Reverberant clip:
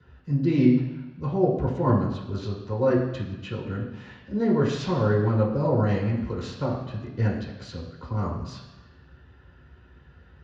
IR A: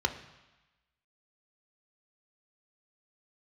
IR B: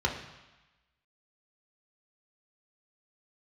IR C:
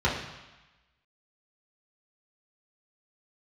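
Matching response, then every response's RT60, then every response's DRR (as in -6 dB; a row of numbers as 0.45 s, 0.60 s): C; 1.1 s, 1.1 s, 1.1 s; 6.0 dB, -0.5 dB, -7.0 dB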